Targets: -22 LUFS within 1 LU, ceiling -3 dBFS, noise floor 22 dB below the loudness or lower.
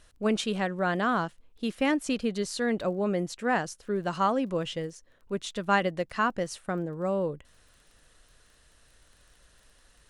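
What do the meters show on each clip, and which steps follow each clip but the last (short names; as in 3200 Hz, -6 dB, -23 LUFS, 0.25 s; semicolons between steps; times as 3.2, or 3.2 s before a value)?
ticks 21/s; loudness -29.5 LUFS; peak -11.0 dBFS; loudness target -22.0 LUFS
-> de-click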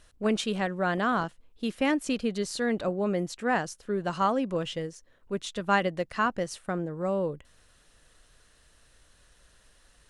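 ticks 0.099/s; loudness -29.5 LUFS; peak -11.0 dBFS; loudness target -22.0 LUFS
-> gain +7.5 dB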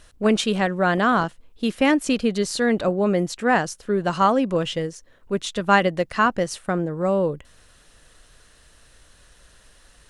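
loudness -22.0 LUFS; peak -3.5 dBFS; noise floor -55 dBFS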